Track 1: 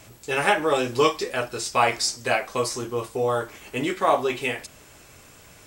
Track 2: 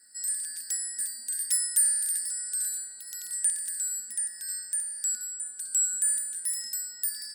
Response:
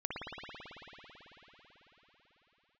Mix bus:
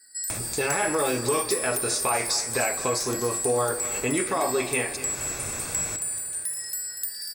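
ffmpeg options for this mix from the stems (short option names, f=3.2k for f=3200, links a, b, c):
-filter_complex "[0:a]bandreject=f=3k:w=6.1,alimiter=limit=-17dB:level=0:latency=1:release=14,acompressor=mode=upward:threshold=-22dB:ratio=2.5,adelay=300,volume=-1dB,asplit=3[a][b][c];[b]volume=-18.5dB[d];[c]volume=-14dB[e];[1:a]aecho=1:1:2.6:0.55,acompressor=threshold=-30dB:ratio=6,volume=-1dB,asplit=3[f][g][h];[g]volume=-3.5dB[i];[h]volume=-7dB[j];[2:a]atrim=start_sample=2205[k];[d][i]amix=inputs=2:normalize=0[l];[l][k]afir=irnorm=-1:irlink=0[m];[e][j]amix=inputs=2:normalize=0,aecho=0:1:239|478|717|956|1195|1434:1|0.46|0.212|0.0973|0.0448|0.0206[n];[a][f][m][n]amix=inputs=4:normalize=0"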